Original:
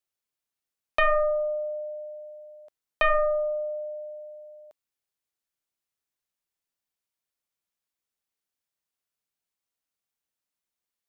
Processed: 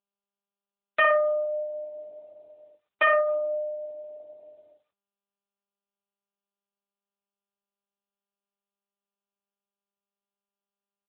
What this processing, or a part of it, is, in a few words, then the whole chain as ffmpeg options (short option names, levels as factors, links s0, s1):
mobile call with aggressive noise cancelling: -filter_complex "[0:a]asplit=3[s0][s1][s2];[s0]afade=t=out:st=3.21:d=0.02[s3];[s1]highpass=110,afade=t=in:st=3.21:d=0.02,afade=t=out:st=4.16:d=0.02[s4];[s2]afade=t=in:st=4.16:d=0.02[s5];[s3][s4][s5]amix=inputs=3:normalize=0,highpass=f=120:w=0.5412,highpass=f=120:w=1.3066,bandreject=f=60:t=h:w=6,bandreject=f=120:t=h:w=6,bandreject=f=180:t=h:w=6,bandreject=f=240:t=h:w=6,bandreject=f=300:t=h:w=6,asplit=2[s6][s7];[s7]adelay=12,volume=0.282[s8];[s6][s8]amix=inputs=2:normalize=0,asplit=2[s9][s10];[s10]adelay=60,lowpass=f=1900:p=1,volume=0.631,asplit=2[s11][s12];[s12]adelay=60,lowpass=f=1900:p=1,volume=0.45,asplit=2[s13][s14];[s14]adelay=60,lowpass=f=1900:p=1,volume=0.45,asplit=2[s15][s16];[s16]adelay=60,lowpass=f=1900:p=1,volume=0.45,asplit=2[s17][s18];[s18]adelay=60,lowpass=f=1900:p=1,volume=0.45,asplit=2[s19][s20];[s20]adelay=60,lowpass=f=1900:p=1,volume=0.45[s21];[s9][s11][s13][s15][s17][s19][s21]amix=inputs=7:normalize=0,afftdn=nr=25:nf=-42,volume=1.26" -ar 8000 -c:a libopencore_amrnb -b:a 10200